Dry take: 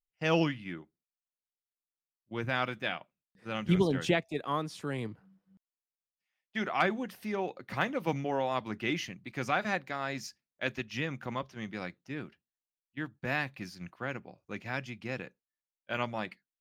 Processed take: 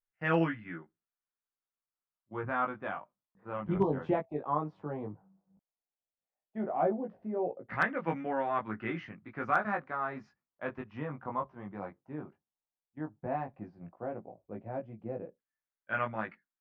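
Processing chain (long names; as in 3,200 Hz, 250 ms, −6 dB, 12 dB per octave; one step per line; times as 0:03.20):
chorus effect 0.13 Hz, delay 18 ms, depth 2.1 ms
auto-filter low-pass saw down 0.13 Hz 570–1,700 Hz
hard clipping −15.5 dBFS, distortion −34 dB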